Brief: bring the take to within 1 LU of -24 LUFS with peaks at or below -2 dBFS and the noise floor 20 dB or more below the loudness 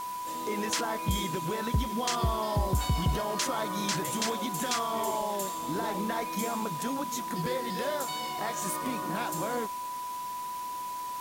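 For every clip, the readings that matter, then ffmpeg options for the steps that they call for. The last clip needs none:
steady tone 990 Hz; tone level -34 dBFS; noise floor -37 dBFS; noise floor target -52 dBFS; loudness -31.5 LUFS; peak -17.5 dBFS; loudness target -24.0 LUFS
-> -af "bandreject=f=990:w=30"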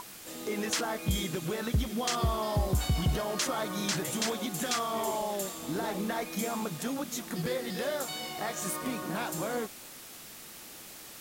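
steady tone none; noise floor -48 dBFS; noise floor target -52 dBFS
-> -af "afftdn=nr=6:nf=-48"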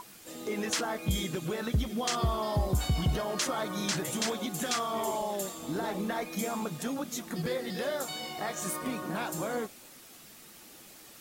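noise floor -52 dBFS; noise floor target -53 dBFS
-> -af "afftdn=nr=6:nf=-52"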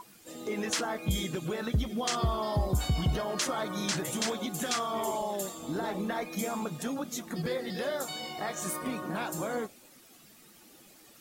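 noise floor -57 dBFS; loudness -32.5 LUFS; peak -18.5 dBFS; loudness target -24.0 LUFS
-> -af "volume=8.5dB"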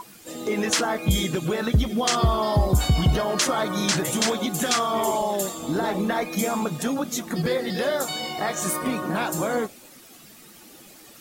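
loudness -24.0 LUFS; peak -10.0 dBFS; noise floor -48 dBFS

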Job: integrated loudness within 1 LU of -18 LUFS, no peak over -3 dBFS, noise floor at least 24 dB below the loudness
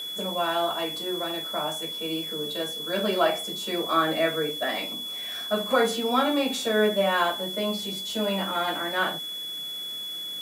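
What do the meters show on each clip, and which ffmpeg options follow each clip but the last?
steady tone 3400 Hz; tone level -32 dBFS; noise floor -35 dBFS; noise floor target -51 dBFS; loudness -26.5 LUFS; peak -9.0 dBFS; loudness target -18.0 LUFS
-> -af "bandreject=f=3.4k:w=30"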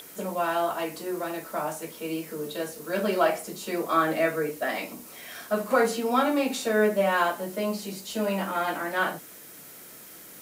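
steady tone none; noise floor -46 dBFS; noise floor target -52 dBFS
-> -af "afftdn=nr=6:nf=-46"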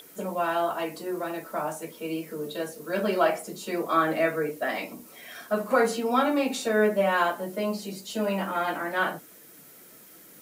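noise floor -51 dBFS; noise floor target -52 dBFS
-> -af "afftdn=nr=6:nf=-51"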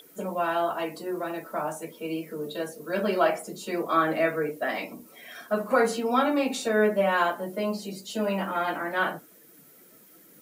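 noise floor -55 dBFS; loudness -27.5 LUFS; peak -9.0 dBFS; loudness target -18.0 LUFS
-> -af "volume=9.5dB,alimiter=limit=-3dB:level=0:latency=1"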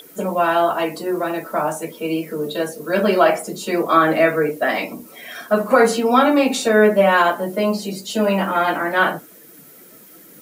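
loudness -18.5 LUFS; peak -3.0 dBFS; noise floor -45 dBFS

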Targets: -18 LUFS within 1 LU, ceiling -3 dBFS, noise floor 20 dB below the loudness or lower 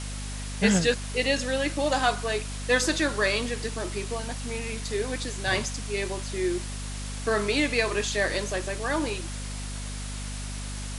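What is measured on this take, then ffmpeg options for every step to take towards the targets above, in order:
hum 50 Hz; harmonics up to 250 Hz; hum level -33 dBFS; noise floor -34 dBFS; noise floor target -48 dBFS; loudness -28.0 LUFS; peak -8.0 dBFS; loudness target -18.0 LUFS
-> -af "bandreject=f=50:t=h:w=4,bandreject=f=100:t=h:w=4,bandreject=f=150:t=h:w=4,bandreject=f=200:t=h:w=4,bandreject=f=250:t=h:w=4"
-af "afftdn=nr=14:nf=-34"
-af "volume=10dB,alimiter=limit=-3dB:level=0:latency=1"

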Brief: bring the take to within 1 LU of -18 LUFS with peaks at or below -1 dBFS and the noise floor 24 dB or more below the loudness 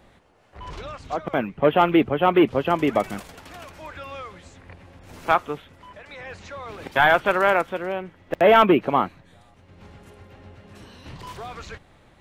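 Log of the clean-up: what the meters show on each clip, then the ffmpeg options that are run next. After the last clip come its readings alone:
loudness -20.5 LUFS; peak -4.5 dBFS; loudness target -18.0 LUFS
-> -af "volume=2.5dB"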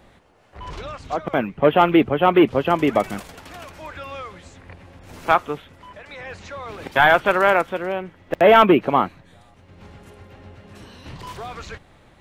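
loudness -18.0 LUFS; peak -2.0 dBFS; noise floor -52 dBFS

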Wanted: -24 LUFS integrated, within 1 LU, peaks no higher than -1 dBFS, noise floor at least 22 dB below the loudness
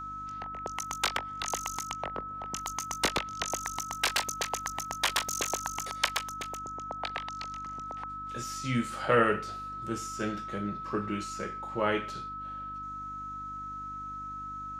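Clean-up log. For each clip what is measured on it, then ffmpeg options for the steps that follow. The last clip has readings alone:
hum 50 Hz; harmonics up to 300 Hz; hum level -47 dBFS; steady tone 1300 Hz; tone level -37 dBFS; loudness -33.0 LUFS; peak -10.5 dBFS; loudness target -24.0 LUFS
-> -af "bandreject=f=50:t=h:w=4,bandreject=f=100:t=h:w=4,bandreject=f=150:t=h:w=4,bandreject=f=200:t=h:w=4,bandreject=f=250:t=h:w=4,bandreject=f=300:t=h:w=4"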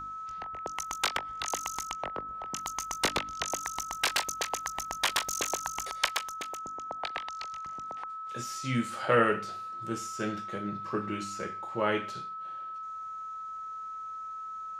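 hum none; steady tone 1300 Hz; tone level -37 dBFS
-> -af "bandreject=f=1.3k:w=30"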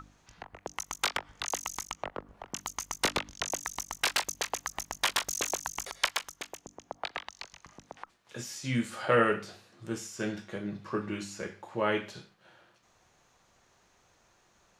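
steady tone none; loudness -33.0 LUFS; peak -11.0 dBFS; loudness target -24.0 LUFS
-> -af "volume=9dB"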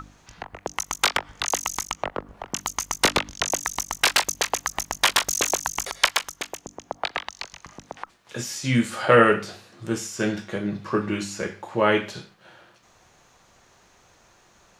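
loudness -24.0 LUFS; peak -2.0 dBFS; noise floor -58 dBFS

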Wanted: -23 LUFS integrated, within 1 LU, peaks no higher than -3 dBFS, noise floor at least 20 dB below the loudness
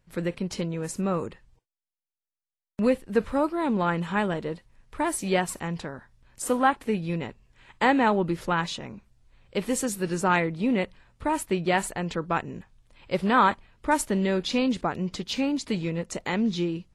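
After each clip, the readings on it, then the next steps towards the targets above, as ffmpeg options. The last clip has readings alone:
loudness -27.0 LUFS; peak -9.0 dBFS; loudness target -23.0 LUFS
-> -af "volume=4dB"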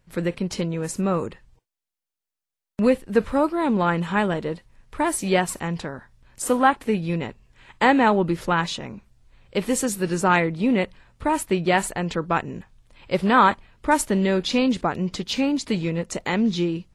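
loudness -23.0 LUFS; peak -5.0 dBFS; noise floor -87 dBFS

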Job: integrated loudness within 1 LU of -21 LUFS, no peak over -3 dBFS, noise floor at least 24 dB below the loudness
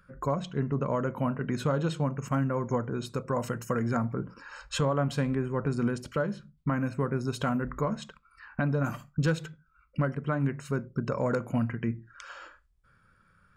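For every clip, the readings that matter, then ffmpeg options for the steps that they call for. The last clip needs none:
loudness -30.5 LUFS; peak -17.5 dBFS; loudness target -21.0 LUFS
-> -af "volume=9.5dB"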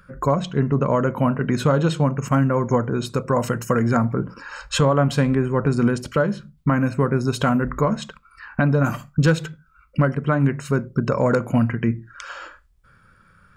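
loudness -21.0 LUFS; peak -8.0 dBFS; noise floor -56 dBFS

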